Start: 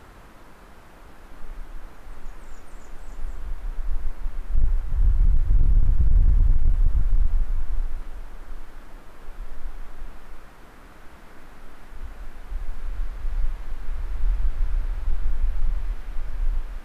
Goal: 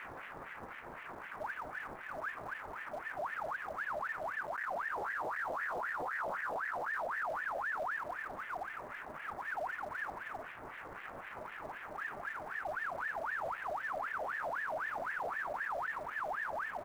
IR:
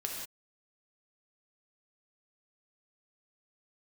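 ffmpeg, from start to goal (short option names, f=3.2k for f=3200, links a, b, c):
-filter_complex "[0:a]highpass=f=250:p=1,aecho=1:1:5.6:0.36,alimiter=level_in=3dB:limit=-24dB:level=0:latency=1:release=95,volume=-3dB,asplit=3[a][b][c];[b]asetrate=29433,aresample=44100,atempo=1.49831,volume=-9dB[d];[c]asetrate=37084,aresample=44100,atempo=1.18921,volume=-4dB[e];[a][d][e]amix=inputs=3:normalize=0,aeval=exprs='0.0266*sin(PI/2*2*val(0)/0.0266)':c=same,aeval=exprs='val(0)+0.00178*(sin(2*PI*60*n/s)+sin(2*PI*2*60*n/s)/2+sin(2*PI*3*60*n/s)/3+sin(2*PI*4*60*n/s)/4+sin(2*PI*5*60*n/s)/5)':c=same,adynamicsmooth=sensitivity=0.5:basefreq=520,acrusher=bits=6:mode=log:mix=0:aa=0.000001,aeval=exprs='val(0)*sin(2*PI*1200*n/s+1200*0.5/3.9*sin(2*PI*3.9*n/s))':c=same"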